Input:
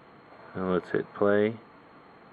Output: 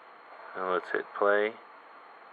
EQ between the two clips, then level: high-pass 720 Hz 12 dB/octave; treble shelf 3 kHz -8.5 dB; +6.0 dB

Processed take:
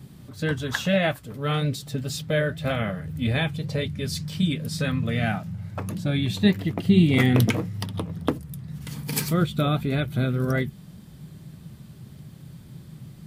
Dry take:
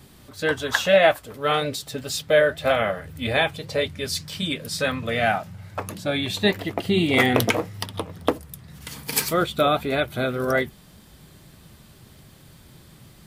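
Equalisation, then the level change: peaking EQ 150 Hz +15 dB 1.7 oct; dynamic bell 680 Hz, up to -6 dB, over -29 dBFS, Q 0.89; -5.0 dB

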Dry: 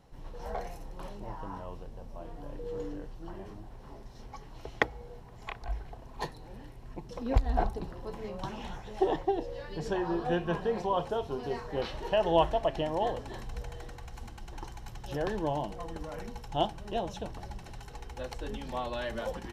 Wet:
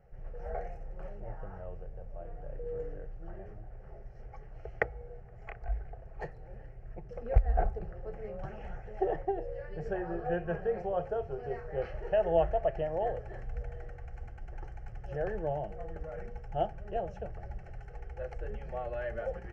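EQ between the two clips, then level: tape spacing loss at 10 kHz 28 dB; static phaser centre 1 kHz, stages 6; +2.0 dB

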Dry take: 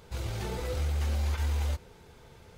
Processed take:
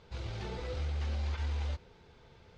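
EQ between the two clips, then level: four-pole ladder low-pass 6.1 kHz, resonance 20%; 0.0 dB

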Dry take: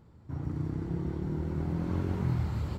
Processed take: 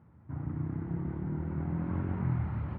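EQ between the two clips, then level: high-pass 80 Hz; low-pass 2.2 kHz 24 dB/octave; peaking EQ 430 Hz -7 dB 0.74 oct; 0.0 dB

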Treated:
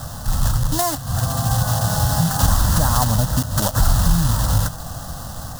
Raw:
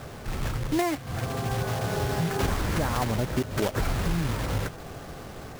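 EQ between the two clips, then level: bass shelf 190 Hz +6 dB; treble shelf 2.9 kHz +10.5 dB; static phaser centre 950 Hz, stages 4; +7.5 dB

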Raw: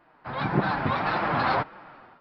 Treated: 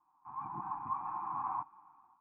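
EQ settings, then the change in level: cascade formant filter a; elliptic band-stop 340–880 Hz, stop band 40 dB; distance through air 330 m; +3.0 dB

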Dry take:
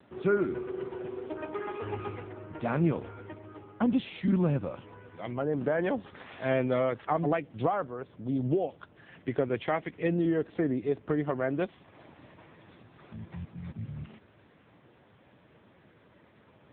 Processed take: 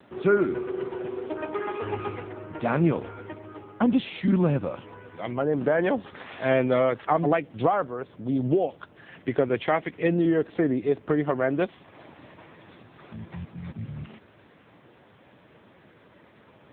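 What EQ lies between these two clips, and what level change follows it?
bass shelf 150 Hz -5.5 dB; +6.0 dB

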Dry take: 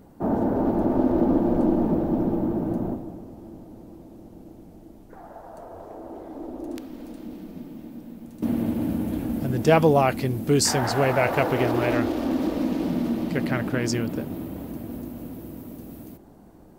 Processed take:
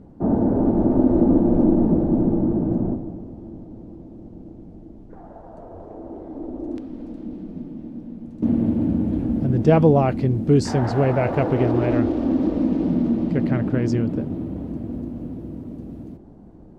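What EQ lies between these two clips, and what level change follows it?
distance through air 77 m; tilt shelf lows +7 dB, about 660 Hz; 0.0 dB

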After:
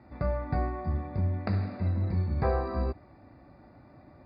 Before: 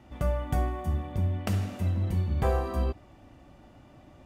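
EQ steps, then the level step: high-pass 62 Hz; Butterworth band-stop 3.1 kHz, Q 1.8; brick-wall FIR low-pass 5 kHz; 0.0 dB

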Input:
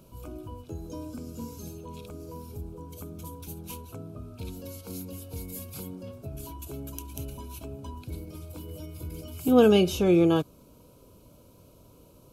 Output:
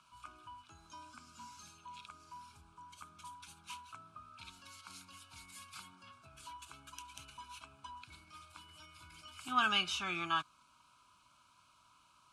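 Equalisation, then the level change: elliptic band-pass 1.2–9.5 kHz, stop band 40 dB; tilt EQ -4.5 dB/octave; +7.0 dB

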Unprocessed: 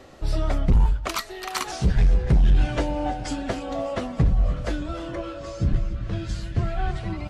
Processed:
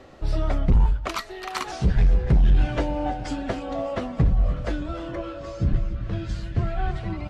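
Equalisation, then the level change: treble shelf 6.1 kHz -11 dB; 0.0 dB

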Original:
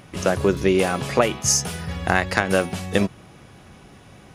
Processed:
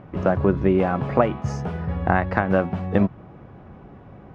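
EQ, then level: low-pass 1.1 kHz 12 dB/octave; dynamic bell 430 Hz, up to -6 dB, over -32 dBFS, Q 1.6; +3.5 dB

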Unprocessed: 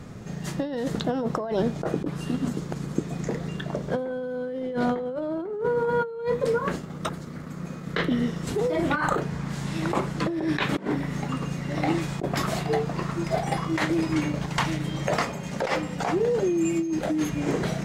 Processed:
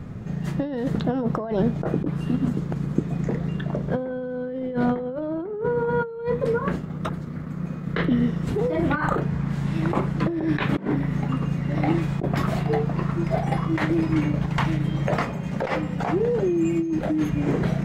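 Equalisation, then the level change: tone controls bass +7 dB, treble -14 dB; treble shelf 11 kHz +12 dB; 0.0 dB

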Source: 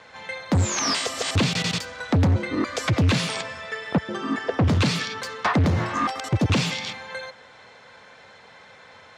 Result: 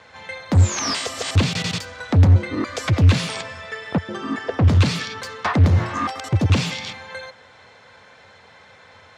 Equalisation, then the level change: peaking EQ 89 Hz +8.5 dB 0.57 oct; 0.0 dB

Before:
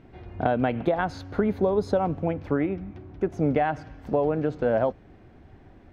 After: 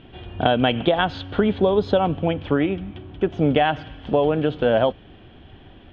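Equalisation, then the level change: resonant low-pass 3.2 kHz, resonance Q 9.3; band-stop 2.1 kHz, Q 13; +4.5 dB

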